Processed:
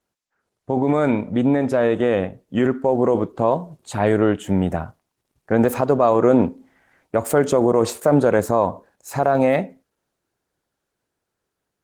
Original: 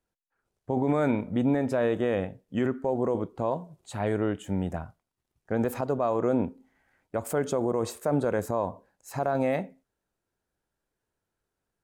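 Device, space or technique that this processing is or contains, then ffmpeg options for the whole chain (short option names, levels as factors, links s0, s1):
video call: -af "highpass=f=100:p=1,dynaudnorm=f=790:g=7:m=1.58,volume=2.24" -ar 48000 -c:a libopus -b:a 16k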